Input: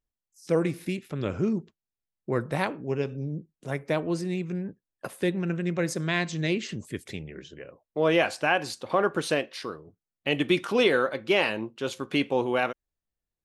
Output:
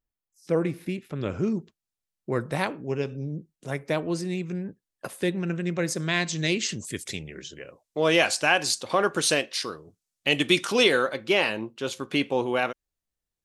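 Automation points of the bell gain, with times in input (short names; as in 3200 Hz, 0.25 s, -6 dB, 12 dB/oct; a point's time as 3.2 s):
bell 7200 Hz 2.2 oct
0.94 s -5.5 dB
1.56 s +4.5 dB
5.95 s +4.5 dB
6.67 s +14 dB
10.7 s +14 dB
11.4 s +4 dB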